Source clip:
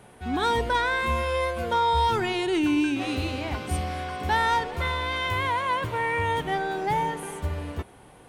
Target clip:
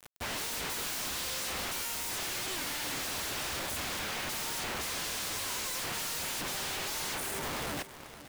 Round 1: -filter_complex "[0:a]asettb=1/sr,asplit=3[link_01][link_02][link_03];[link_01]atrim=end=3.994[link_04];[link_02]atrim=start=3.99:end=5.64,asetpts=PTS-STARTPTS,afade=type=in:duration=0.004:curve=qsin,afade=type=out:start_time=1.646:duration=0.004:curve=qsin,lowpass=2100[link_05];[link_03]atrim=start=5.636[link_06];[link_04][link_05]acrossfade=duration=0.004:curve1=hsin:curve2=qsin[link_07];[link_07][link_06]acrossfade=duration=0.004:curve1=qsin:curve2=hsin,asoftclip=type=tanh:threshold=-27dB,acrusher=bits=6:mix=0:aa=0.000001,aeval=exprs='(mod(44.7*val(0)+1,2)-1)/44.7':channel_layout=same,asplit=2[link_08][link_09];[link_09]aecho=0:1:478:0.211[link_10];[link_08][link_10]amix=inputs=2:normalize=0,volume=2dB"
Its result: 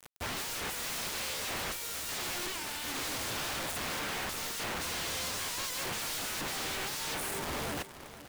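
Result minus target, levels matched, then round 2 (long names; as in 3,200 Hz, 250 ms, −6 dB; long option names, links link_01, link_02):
soft clipping: distortion +9 dB
-filter_complex "[0:a]asettb=1/sr,asplit=3[link_01][link_02][link_03];[link_01]atrim=end=3.994[link_04];[link_02]atrim=start=3.99:end=5.64,asetpts=PTS-STARTPTS,afade=type=in:duration=0.004:curve=qsin,afade=type=out:start_time=1.646:duration=0.004:curve=qsin,lowpass=2100[link_05];[link_03]atrim=start=5.636[link_06];[link_04][link_05]acrossfade=duration=0.004:curve1=hsin:curve2=qsin[link_07];[link_07][link_06]acrossfade=duration=0.004:curve1=qsin:curve2=hsin,asoftclip=type=tanh:threshold=-19dB,acrusher=bits=6:mix=0:aa=0.000001,aeval=exprs='(mod(44.7*val(0)+1,2)-1)/44.7':channel_layout=same,asplit=2[link_08][link_09];[link_09]aecho=0:1:478:0.211[link_10];[link_08][link_10]amix=inputs=2:normalize=0,volume=2dB"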